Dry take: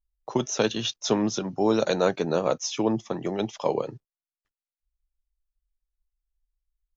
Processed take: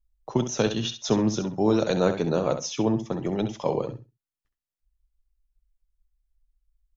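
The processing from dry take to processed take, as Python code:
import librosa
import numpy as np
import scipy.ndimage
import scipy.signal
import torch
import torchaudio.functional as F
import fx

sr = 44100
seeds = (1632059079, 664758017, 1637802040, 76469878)

p1 = fx.low_shelf(x, sr, hz=190.0, db=12.0)
p2 = p1 + fx.echo_feedback(p1, sr, ms=66, feedback_pct=18, wet_db=-9.5, dry=0)
y = p2 * 10.0 ** (-2.5 / 20.0)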